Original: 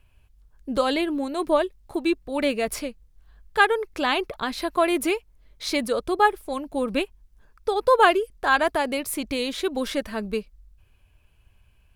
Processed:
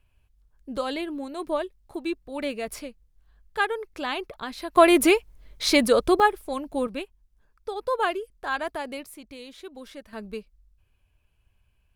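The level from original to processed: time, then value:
−6.5 dB
from 0:04.76 +5.5 dB
from 0:06.20 −1 dB
from 0:06.87 −8.5 dB
from 0:09.06 −15.5 dB
from 0:10.13 −8 dB

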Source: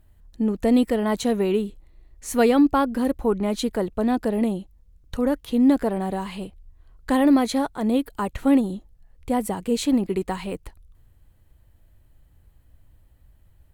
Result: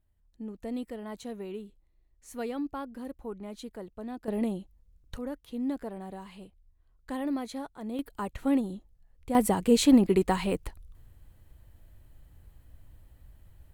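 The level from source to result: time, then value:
−17 dB
from 0:04.28 −7 dB
from 0:05.18 −14.5 dB
from 0:07.99 −8 dB
from 0:09.35 +1.5 dB

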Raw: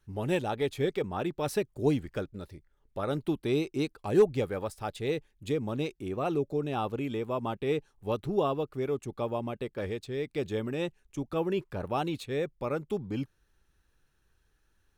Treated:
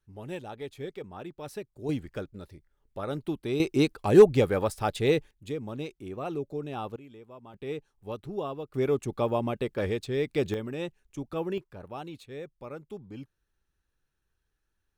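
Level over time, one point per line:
−9 dB
from 0:01.89 −2 dB
from 0:03.60 +7 dB
from 0:05.31 −4 dB
from 0:06.96 −16 dB
from 0:07.54 −6 dB
from 0:08.74 +5 dB
from 0:10.54 −2 dB
from 0:11.58 −9 dB

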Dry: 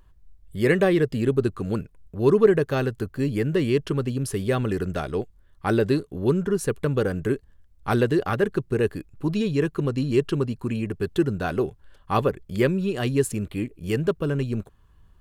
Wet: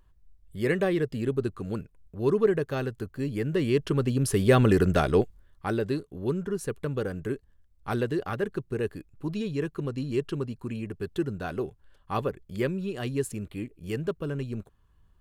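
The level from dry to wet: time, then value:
0:03.31 −6 dB
0:04.63 +5 dB
0:05.20 +5 dB
0:05.74 −7 dB

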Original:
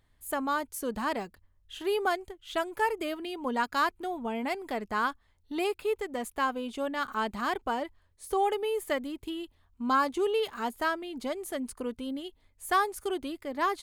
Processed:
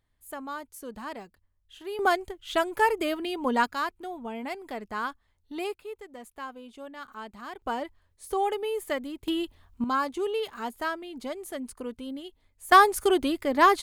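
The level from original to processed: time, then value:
−7 dB
from 0:01.99 +5 dB
from 0:03.72 −3 dB
from 0:05.75 −10 dB
from 0:07.62 0 dB
from 0:09.28 +8 dB
from 0:09.84 −1.5 dB
from 0:12.72 +9.5 dB

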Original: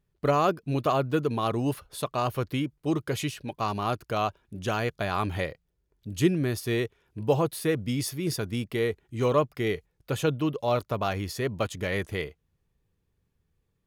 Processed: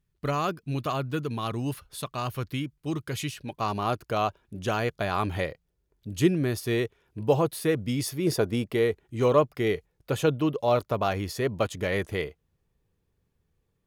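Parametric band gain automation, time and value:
parametric band 550 Hz 2 octaves
0:03.18 −7 dB
0:03.72 +1.5 dB
0:08.11 +1.5 dB
0:08.36 +11.5 dB
0:08.87 +3 dB

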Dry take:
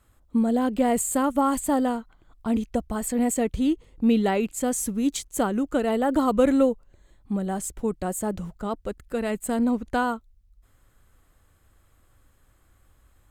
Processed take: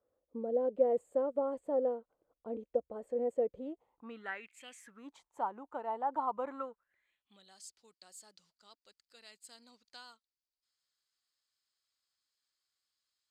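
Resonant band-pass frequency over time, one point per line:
resonant band-pass, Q 6.6
0:03.55 510 Hz
0:04.68 2,800 Hz
0:05.11 910 Hz
0:06.42 910 Hz
0:07.57 4,700 Hz

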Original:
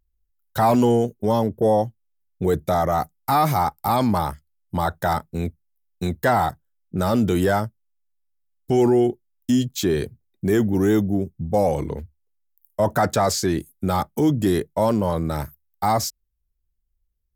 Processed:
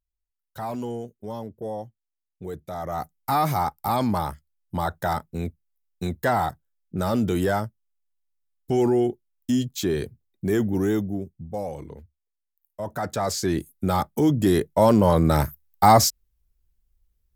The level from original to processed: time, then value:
0:02.70 −14 dB
0:03.15 −3.5 dB
0:10.77 −3.5 dB
0:11.68 −12 dB
0:12.83 −12 dB
0:13.58 −1 dB
0:14.30 −1 dB
0:15.31 +6 dB

